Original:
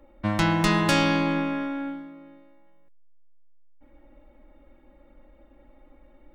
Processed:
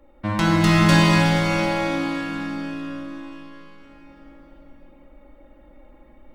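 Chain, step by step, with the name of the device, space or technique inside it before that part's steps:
cathedral (convolution reverb RT60 5.0 s, pre-delay 14 ms, DRR −4 dB)

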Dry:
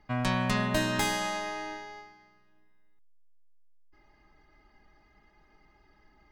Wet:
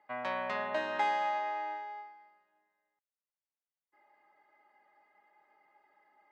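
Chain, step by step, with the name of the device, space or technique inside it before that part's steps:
tin-can telephone (band-pass filter 530–2,300 Hz; hollow resonant body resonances 570/830/2,000 Hz, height 9 dB, ringing for 45 ms)
level −4 dB

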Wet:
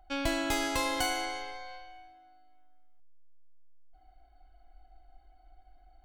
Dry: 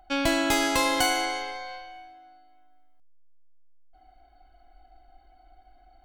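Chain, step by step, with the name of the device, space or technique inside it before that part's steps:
low shelf boost with a cut just above (low-shelf EQ 110 Hz +8 dB; parametric band 190 Hz −4.5 dB 0.66 octaves)
level −7 dB

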